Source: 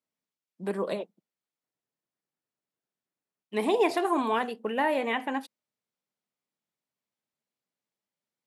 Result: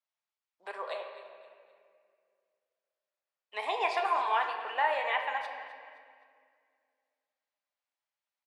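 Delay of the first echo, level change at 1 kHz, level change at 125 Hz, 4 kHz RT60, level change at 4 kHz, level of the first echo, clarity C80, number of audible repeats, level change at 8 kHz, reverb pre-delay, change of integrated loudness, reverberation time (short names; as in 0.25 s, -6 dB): 0.259 s, +0.5 dB, n/a, 1.6 s, -1.0 dB, -15.5 dB, 6.5 dB, 2, under -10 dB, 5 ms, -3.0 dB, 2.1 s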